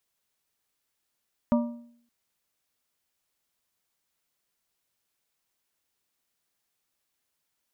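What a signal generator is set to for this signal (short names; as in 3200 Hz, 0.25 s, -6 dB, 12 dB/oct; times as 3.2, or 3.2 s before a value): metal hit plate, length 0.57 s, lowest mode 237 Hz, modes 4, decay 0.63 s, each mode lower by 6 dB, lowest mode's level -17.5 dB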